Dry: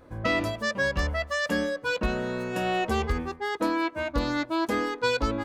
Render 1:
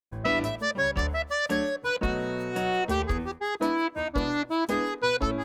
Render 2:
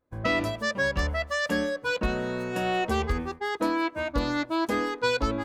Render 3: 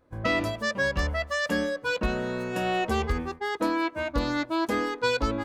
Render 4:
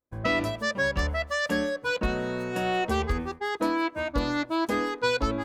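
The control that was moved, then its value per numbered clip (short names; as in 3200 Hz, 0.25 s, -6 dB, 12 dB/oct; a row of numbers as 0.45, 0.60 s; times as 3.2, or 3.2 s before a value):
gate, range: -57, -25, -12, -38 dB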